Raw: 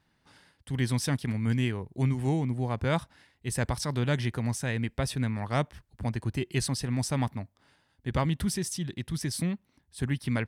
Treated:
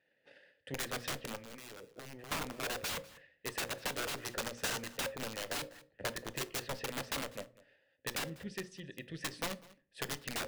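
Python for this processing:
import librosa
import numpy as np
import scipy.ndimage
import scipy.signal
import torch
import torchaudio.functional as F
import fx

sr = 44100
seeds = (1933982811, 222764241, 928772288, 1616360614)

y = fx.vowel_filter(x, sr, vowel='e')
y = fx.env_lowpass_down(y, sr, base_hz=540.0, full_db=-35.5)
y = fx.hum_notches(y, sr, base_hz=60, count=9)
y = fx.peak_eq(y, sr, hz=1000.0, db=-8.5, octaves=3.0, at=(8.22, 9.07), fade=0.02)
y = (np.mod(10.0 ** (43.0 / 20.0) * y + 1.0, 2.0) - 1.0) / 10.0 ** (43.0 / 20.0)
y = fx.level_steps(y, sr, step_db=12, at=(1.35, 2.31), fade=0.02)
y = fx.peak_eq(y, sr, hz=6700.0, db=4.0, octaves=1.2, at=(4.21, 4.84))
y = y + 10.0 ** (-18.0 / 20.0) * np.pad(y, (int(197 * sr / 1000.0), 0))[:len(y)]
y = fx.transient(y, sr, attack_db=6, sustain_db=-1)
y = fx.room_shoebox(y, sr, seeds[0], volume_m3=290.0, walls='furnished', distance_m=0.33)
y = y * 10.0 ** (9.0 / 20.0)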